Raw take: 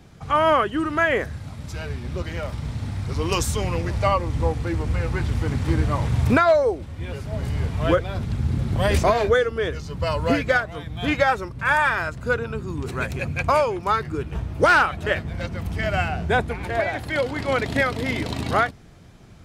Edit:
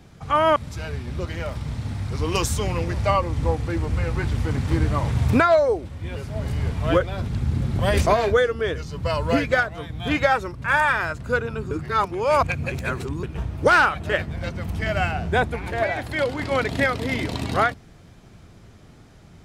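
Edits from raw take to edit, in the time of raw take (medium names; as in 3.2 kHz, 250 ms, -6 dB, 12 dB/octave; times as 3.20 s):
0.56–1.53 s: delete
12.68–14.20 s: reverse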